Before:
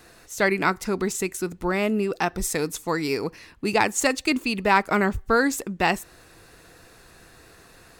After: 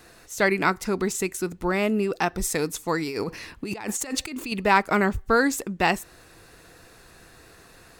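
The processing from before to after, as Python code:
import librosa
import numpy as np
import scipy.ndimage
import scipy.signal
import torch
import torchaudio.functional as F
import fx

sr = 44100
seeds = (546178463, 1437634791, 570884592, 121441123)

y = fx.over_compress(x, sr, threshold_db=-31.0, ratio=-1.0, at=(3.03, 4.52))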